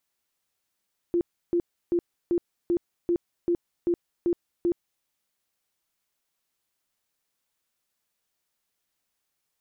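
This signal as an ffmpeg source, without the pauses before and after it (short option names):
-f lavfi -i "aevalsrc='0.1*sin(2*PI*346*mod(t,0.39))*lt(mod(t,0.39),24/346)':d=3.9:s=44100"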